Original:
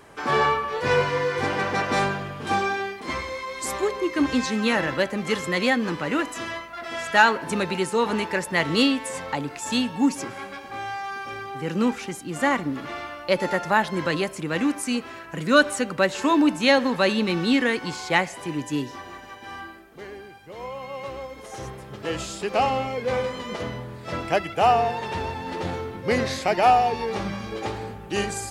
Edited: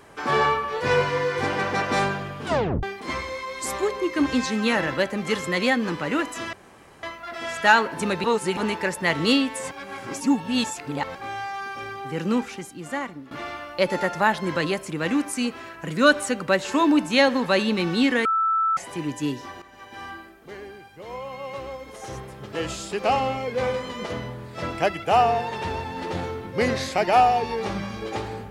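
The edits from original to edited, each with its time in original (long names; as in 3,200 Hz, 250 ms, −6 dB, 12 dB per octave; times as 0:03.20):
0:02.46: tape stop 0.37 s
0:06.53: splice in room tone 0.50 s
0:07.74–0:08.07: reverse
0:09.21–0:10.65: reverse
0:11.71–0:12.81: fade out, to −15.5 dB
0:17.75–0:18.27: beep over 1,320 Hz −18.5 dBFS
0:19.12–0:19.43: fade in, from −12.5 dB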